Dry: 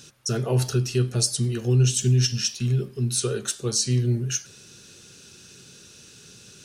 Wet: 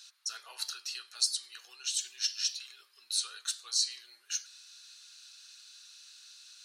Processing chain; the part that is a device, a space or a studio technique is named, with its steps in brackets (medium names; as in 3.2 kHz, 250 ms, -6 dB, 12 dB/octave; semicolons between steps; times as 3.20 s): headphones lying on a table (high-pass 1.1 kHz 24 dB/octave; peaking EQ 4.2 kHz +12 dB 0.35 oct); trim -8.5 dB